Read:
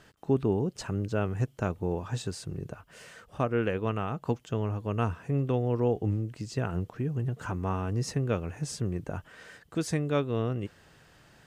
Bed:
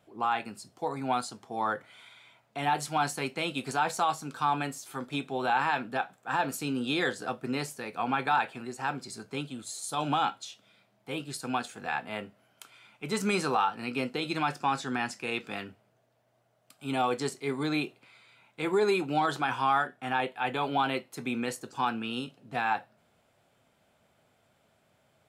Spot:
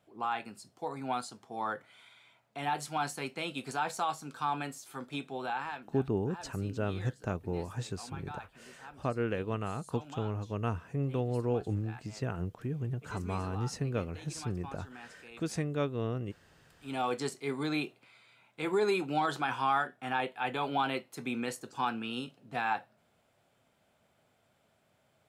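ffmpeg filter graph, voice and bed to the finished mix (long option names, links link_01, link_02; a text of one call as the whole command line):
ffmpeg -i stem1.wav -i stem2.wav -filter_complex "[0:a]adelay=5650,volume=-4.5dB[link_01];[1:a]volume=10.5dB,afade=type=out:start_time=5.24:duration=0.69:silence=0.211349,afade=type=in:start_time=16.63:duration=0.51:silence=0.16788[link_02];[link_01][link_02]amix=inputs=2:normalize=0" out.wav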